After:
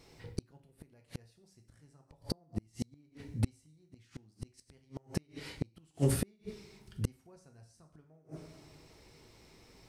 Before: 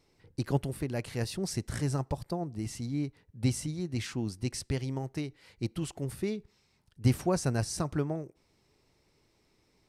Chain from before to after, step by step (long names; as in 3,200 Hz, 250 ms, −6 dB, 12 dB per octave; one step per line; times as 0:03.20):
coupled-rooms reverb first 0.49 s, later 2 s, from −27 dB, DRR 3 dB
gate with flip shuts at −26 dBFS, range −40 dB
level +8.5 dB